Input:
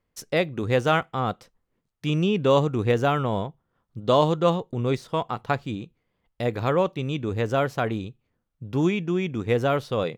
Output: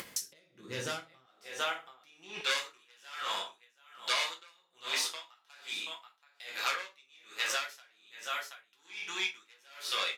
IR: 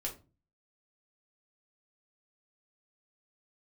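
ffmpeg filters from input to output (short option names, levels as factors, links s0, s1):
-filter_complex "[0:a]aecho=1:1:730:0.188,asoftclip=type=tanh:threshold=0.106[s0];[1:a]atrim=start_sample=2205,asetrate=31311,aresample=44100[s1];[s0][s1]afir=irnorm=-1:irlink=0,acompressor=mode=upward:threshold=0.0708:ratio=2.5,asetnsamples=n=441:p=0,asendcmd='1.26 highpass f 510;2.41 highpass f 1300',highpass=120,acompressor=threshold=0.0251:ratio=16,tiltshelf=f=1500:g=-8.5,aeval=exprs='val(0)*pow(10,-32*(0.5-0.5*cos(2*PI*1.2*n/s))/20)':c=same,volume=1.88"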